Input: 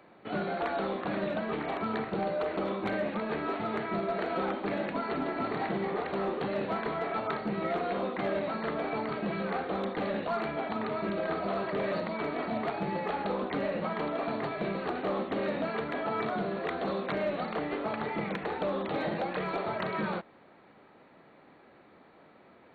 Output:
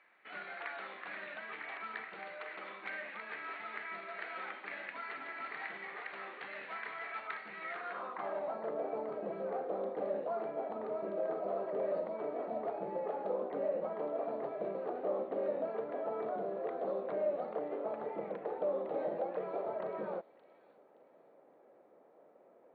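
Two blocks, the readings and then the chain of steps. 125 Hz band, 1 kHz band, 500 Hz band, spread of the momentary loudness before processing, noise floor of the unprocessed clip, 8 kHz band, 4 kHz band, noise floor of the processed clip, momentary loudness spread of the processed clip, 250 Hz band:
-18.5 dB, -8.5 dB, -4.5 dB, 2 LU, -58 dBFS, no reading, under -10 dB, -63 dBFS, 8 LU, -14.0 dB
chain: feedback echo behind a high-pass 571 ms, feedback 33%, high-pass 2.7 kHz, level -11 dB; band-pass sweep 2 kHz -> 540 Hz, 7.66–8.73 s

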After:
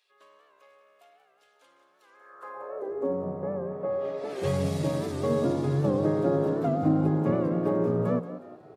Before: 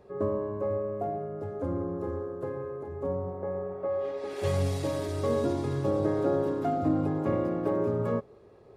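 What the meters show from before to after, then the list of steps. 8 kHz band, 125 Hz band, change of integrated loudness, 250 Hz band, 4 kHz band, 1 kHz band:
+0.5 dB, +3.0 dB, +3.0 dB, +3.0 dB, +0.5 dB, -0.5 dB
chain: on a send: frequency-shifting echo 182 ms, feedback 43%, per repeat +66 Hz, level -12.5 dB; on the sum: high-pass sweep 3.1 kHz -> 150 Hz, 2.05–3.33 s; warped record 78 rpm, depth 100 cents

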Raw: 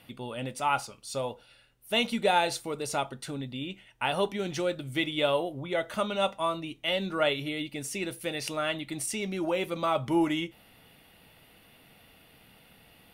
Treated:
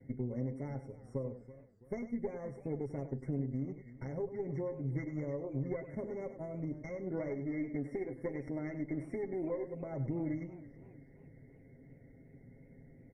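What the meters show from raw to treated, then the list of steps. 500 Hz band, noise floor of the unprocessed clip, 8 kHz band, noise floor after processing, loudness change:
-9.0 dB, -59 dBFS, under -30 dB, -59 dBFS, -9.5 dB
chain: gate with hold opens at -48 dBFS; time-frequency box 7.07–9.67 s, 230–2700 Hz +7 dB; high-order bell 1.1 kHz -12 dB; comb 7.5 ms, depth 71%; compression 8:1, threshold -36 dBFS, peak gain reduction 20 dB; static phaser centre 2.8 kHz, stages 4; valve stage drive 29 dB, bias 0.7; brick-wall FIR band-stop 2.2–5.4 kHz; tape spacing loss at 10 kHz 33 dB; delay 99 ms -11.5 dB; modulated delay 327 ms, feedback 42%, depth 153 cents, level -16.5 dB; trim +8 dB

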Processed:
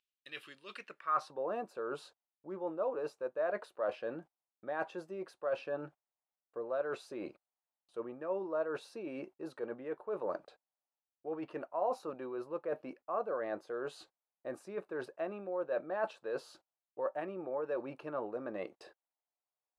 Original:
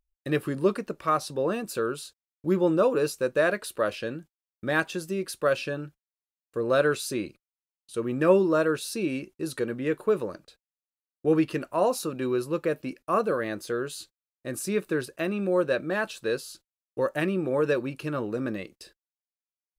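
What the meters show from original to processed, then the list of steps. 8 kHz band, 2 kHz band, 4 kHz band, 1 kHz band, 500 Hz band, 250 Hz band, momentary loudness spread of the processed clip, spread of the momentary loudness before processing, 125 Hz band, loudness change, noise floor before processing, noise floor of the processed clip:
under -20 dB, -15.0 dB, -16.5 dB, -8.0 dB, -11.0 dB, -16.5 dB, 12 LU, 13 LU, -22.5 dB, -12.0 dB, under -85 dBFS, under -85 dBFS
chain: reverse; compression 10:1, threshold -37 dBFS, peak gain reduction 22.5 dB; reverse; band-pass sweep 3.1 kHz -> 760 Hz, 0.73–1.39 s; trim +11 dB

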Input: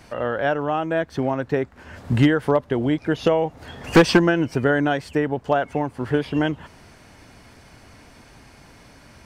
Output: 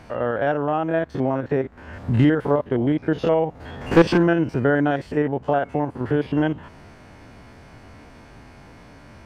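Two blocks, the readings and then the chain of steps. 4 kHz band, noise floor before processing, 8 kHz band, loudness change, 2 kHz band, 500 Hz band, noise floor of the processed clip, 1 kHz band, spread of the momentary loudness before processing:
-6.5 dB, -49 dBFS, no reading, 0.0 dB, -3.0 dB, 0.0 dB, -46 dBFS, -0.5 dB, 9 LU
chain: spectrogram pixelated in time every 50 ms; treble shelf 3.3 kHz -12 dB; in parallel at -2 dB: compression, threshold -31 dBFS, peak gain reduction 19.5 dB

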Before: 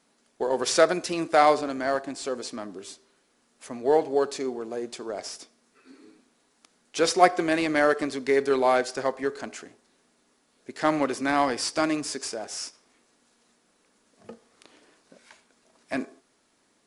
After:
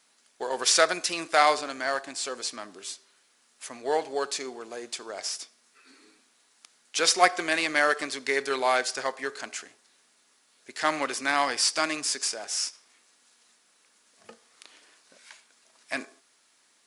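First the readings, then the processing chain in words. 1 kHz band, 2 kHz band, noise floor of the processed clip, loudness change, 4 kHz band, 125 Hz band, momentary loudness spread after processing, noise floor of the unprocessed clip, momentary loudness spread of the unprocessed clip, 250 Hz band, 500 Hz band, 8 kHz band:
-1.5 dB, +3.0 dB, -65 dBFS, -1.0 dB, +5.5 dB, -11.0 dB, 16 LU, -68 dBFS, 18 LU, -9.0 dB, -5.5 dB, +6.0 dB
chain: tilt shelf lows -9 dB, about 740 Hz; trim -3 dB

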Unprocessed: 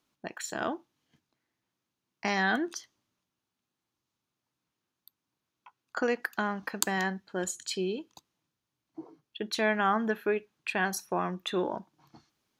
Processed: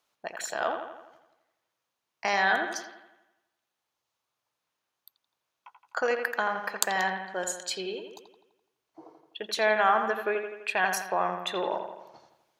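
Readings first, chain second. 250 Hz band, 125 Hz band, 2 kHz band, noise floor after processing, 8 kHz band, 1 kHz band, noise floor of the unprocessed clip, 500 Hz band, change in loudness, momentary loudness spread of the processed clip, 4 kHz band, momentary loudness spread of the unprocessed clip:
-7.5 dB, no reading, +3.5 dB, -84 dBFS, +2.0 dB, +5.0 dB, under -85 dBFS, +2.5 dB, +2.5 dB, 17 LU, +2.5 dB, 15 LU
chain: resonant low shelf 400 Hz -10.5 dB, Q 1.5; on a send: bucket-brigade echo 84 ms, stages 2048, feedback 55%, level -7 dB; on the sum: trim +2 dB

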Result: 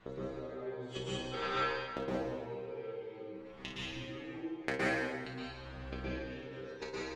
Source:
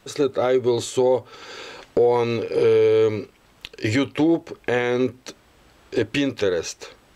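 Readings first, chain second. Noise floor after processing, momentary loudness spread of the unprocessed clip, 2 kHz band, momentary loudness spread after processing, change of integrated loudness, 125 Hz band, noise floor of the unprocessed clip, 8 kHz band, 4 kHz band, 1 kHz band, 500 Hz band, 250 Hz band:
-49 dBFS, 19 LU, -9.0 dB, 11 LU, -18.0 dB, -14.5 dB, -56 dBFS, no reading, -11.5 dB, -11.5 dB, -20.5 dB, -17.5 dB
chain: self-modulated delay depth 0.059 ms; low-pass 2.6 kHz 12 dB/octave; gate -44 dBFS, range -9 dB; compression 1.5:1, threshold -39 dBFS, peak gain reduction 9 dB; inverted gate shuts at -34 dBFS, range -29 dB; inharmonic resonator 63 Hz, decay 0.51 s, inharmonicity 0.002; on a send: early reflections 32 ms -6.5 dB, 56 ms -8.5 dB; on the sum: plate-style reverb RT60 1.6 s, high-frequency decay 0.8×, pre-delay 105 ms, DRR -7 dB; trim +16 dB

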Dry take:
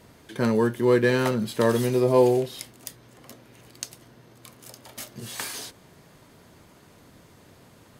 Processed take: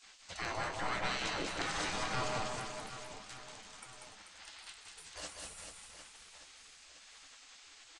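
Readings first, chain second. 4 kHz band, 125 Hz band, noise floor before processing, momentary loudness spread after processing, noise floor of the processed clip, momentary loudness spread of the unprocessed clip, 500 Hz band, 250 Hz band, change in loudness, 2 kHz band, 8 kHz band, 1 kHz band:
-3.0 dB, -18.5 dB, -54 dBFS, 19 LU, -58 dBFS, 21 LU, -22.0 dB, -22.0 dB, -16.5 dB, -6.5 dB, -6.5 dB, -7.0 dB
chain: single-diode clipper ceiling -16.5 dBFS; steep low-pass 8.1 kHz 48 dB/octave; spectral gate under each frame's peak -20 dB weak; bass shelf 440 Hz +6.5 dB; in parallel at +3 dB: peak limiter -31 dBFS, peak gain reduction 11.5 dB; on the sum: compression 1.5:1, threshold -38 dBFS, peak gain reduction 4.5 dB; time-frequency box 4.39–4.72 s, 600–5400 Hz +6 dB; hard clipper -21.5 dBFS, distortion -49 dB; flange 0.86 Hz, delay 7.9 ms, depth 6.1 ms, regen +66%; on a send: reverse bouncing-ball echo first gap 190 ms, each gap 1.3×, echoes 5; on the sum: trim +1.5 dB

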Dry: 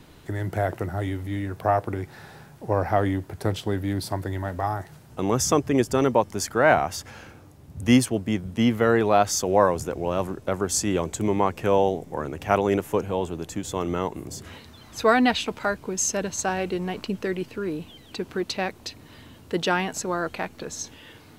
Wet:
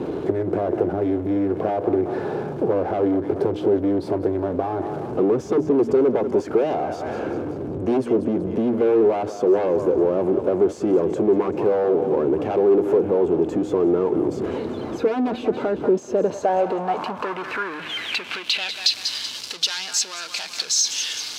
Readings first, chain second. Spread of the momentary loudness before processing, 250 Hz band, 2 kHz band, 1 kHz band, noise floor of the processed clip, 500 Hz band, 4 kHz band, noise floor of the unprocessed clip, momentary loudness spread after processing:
15 LU, +4.0 dB, -3.0 dB, -2.0 dB, -34 dBFS, +6.0 dB, +7.5 dB, -49 dBFS, 8 LU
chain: de-hum 77.74 Hz, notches 4; on a send: thinning echo 190 ms, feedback 42%, high-pass 610 Hz, level -17.5 dB; on the sum: sine folder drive 13 dB, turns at -3.5 dBFS; power-law waveshaper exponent 0.5; band-stop 1.9 kHz, Q 12; compression, threshold -12 dBFS, peak gain reduction 7.5 dB; band-pass sweep 390 Hz -> 4.8 kHz, 16.04–19.06 s

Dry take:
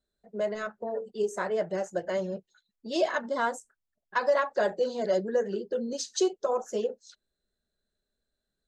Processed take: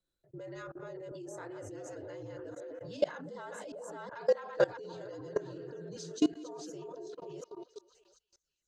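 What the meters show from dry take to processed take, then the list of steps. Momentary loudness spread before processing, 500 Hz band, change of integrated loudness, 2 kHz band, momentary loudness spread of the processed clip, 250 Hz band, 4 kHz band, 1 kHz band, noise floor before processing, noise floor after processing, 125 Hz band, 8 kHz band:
9 LU, -7.5 dB, -8.0 dB, -11.0 dB, 14 LU, -3.0 dB, -9.5 dB, -13.0 dB, -85 dBFS, under -85 dBFS, no reading, -11.0 dB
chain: chunks repeated in reverse 372 ms, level -5.5 dB; frequency shift -66 Hz; on a send: repeats whose band climbs or falls 244 ms, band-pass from 310 Hz, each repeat 0.7 oct, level -8 dB; on the sum: level held to a coarse grid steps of 22 dB

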